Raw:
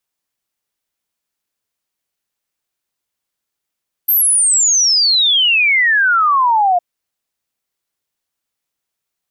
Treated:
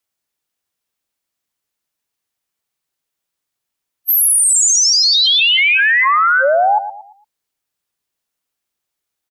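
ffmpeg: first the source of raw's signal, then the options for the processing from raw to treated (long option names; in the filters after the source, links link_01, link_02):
-f lavfi -i "aevalsrc='0.335*clip(min(t,2.71-t)/0.01,0,1)*sin(2*PI*13000*2.71/log(690/13000)*(exp(log(690/13000)*t/2.71)-1))':duration=2.71:sample_rate=44100"
-filter_complex "[0:a]afftfilt=real='real(if(between(b,1,1008),(2*floor((b-1)/24)+1)*24-b,b),0)':imag='imag(if(between(b,1,1008),(2*floor((b-1)/24)+1)*24-b,b),0)*if(between(b,1,1008),-1,1)':win_size=2048:overlap=0.75,asplit=2[link_01][link_02];[link_02]aecho=0:1:114|228|342|456:0.266|0.0931|0.0326|0.0114[link_03];[link_01][link_03]amix=inputs=2:normalize=0"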